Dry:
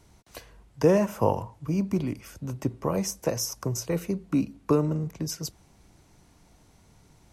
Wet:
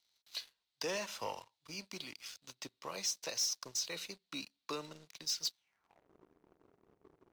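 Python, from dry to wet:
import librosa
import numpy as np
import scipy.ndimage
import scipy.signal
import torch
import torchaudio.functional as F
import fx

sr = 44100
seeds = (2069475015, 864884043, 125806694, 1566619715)

y = fx.filter_sweep_bandpass(x, sr, from_hz=4000.0, to_hz=390.0, start_s=5.56, end_s=6.1, q=4.0)
y = fx.leveller(y, sr, passes=3)
y = y * librosa.db_to_amplitude(1.0)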